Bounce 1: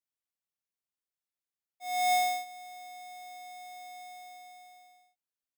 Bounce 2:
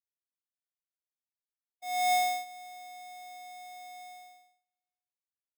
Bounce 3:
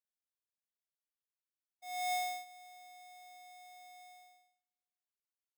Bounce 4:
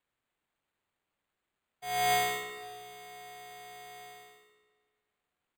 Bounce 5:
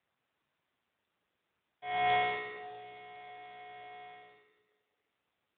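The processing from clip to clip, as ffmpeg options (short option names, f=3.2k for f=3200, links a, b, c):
-af "agate=range=-38dB:threshold=-50dB:ratio=16:detection=peak"
-af "lowshelf=f=350:g=-9,volume=-7.5dB"
-filter_complex "[0:a]acrusher=samples=8:mix=1:aa=0.000001,asplit=2[a][b];[b]adelay=203,lowpass=f=4.8k:p=1,volume=-8dB,asplit=2[c][d];[d]adelay=203,lowpass=f=4.8k:p=1,volume=0.42,asplit=2[e][f];[f]adelay=203,lowpass=f=4.8k:p=1,volume=0.42,asplit=2[g][h];[h]adelay=203,lowpass=f=4.8k:p=1,volume=0.42,asplit=2[i][j];[j]adelay=203,lowpass=f=4.8k:p=1,volume=0.42[k];[a][c][e][g][i][k]amix=inputs=6:normalize=0,volume=8.5dB"
-ar 8000 -c:a libopencore_amrnb -b:a 7950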